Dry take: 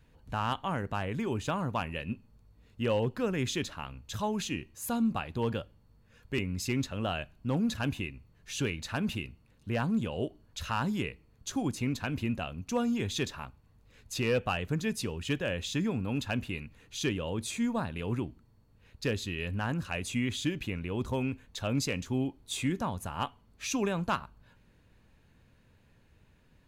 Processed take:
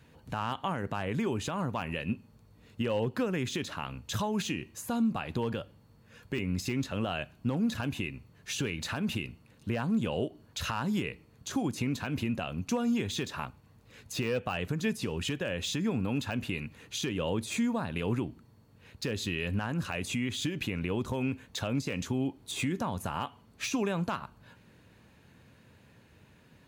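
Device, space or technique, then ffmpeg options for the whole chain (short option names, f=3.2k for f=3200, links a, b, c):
podcast mastering chain: -af "highpass=100,deesser=1,acompressor=threshold=-33dB:ratio=3,alimiter=level_in=4dB:limit=-24dB:level=0:latency=1:release=141,volume=-4dB,volume=7.5dB" -ar 44100 -c:a libmp3lame -b:a 96k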